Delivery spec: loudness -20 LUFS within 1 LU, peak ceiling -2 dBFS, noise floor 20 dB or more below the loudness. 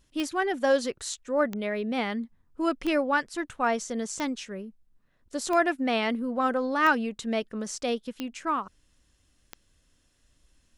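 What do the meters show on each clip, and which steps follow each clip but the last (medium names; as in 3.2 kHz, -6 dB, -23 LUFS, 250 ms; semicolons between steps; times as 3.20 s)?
clicks found 8; loudness -28.0 LUFS; peak level -10.5 dBFS; loudness target -20.0 LUFS
-> de-click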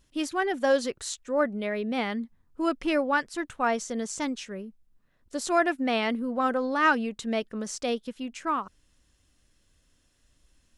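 clicks found 0; loudness -28.0 LUFS; peak level -10.5 dBFS; loudness target -20.0 LUFS
-> trim +8 dB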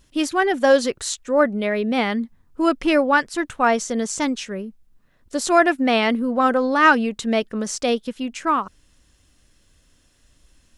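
loudness -20.5 LUFS; peak level -2.5 dBFS; noise floor -60 dBFS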